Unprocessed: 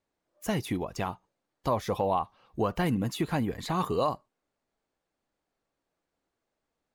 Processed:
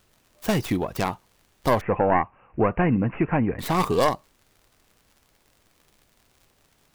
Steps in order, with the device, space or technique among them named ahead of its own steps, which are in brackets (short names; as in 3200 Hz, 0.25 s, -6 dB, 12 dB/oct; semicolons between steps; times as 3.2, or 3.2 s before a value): record under a worn stylus (tracing distortion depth 0.31 ms; crackle 77/s -51 dBFS; pink noise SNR 38 dB); 1.81–3.59 steep low-pass 2700 Hz 96 dB/oct; gain +6.5 dB